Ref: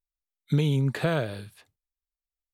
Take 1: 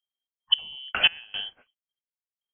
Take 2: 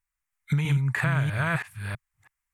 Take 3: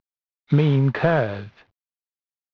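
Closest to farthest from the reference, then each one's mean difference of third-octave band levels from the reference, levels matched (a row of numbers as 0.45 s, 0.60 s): 3, 2, 1; 4.5 dB, 8.5 dB, 16.0 dB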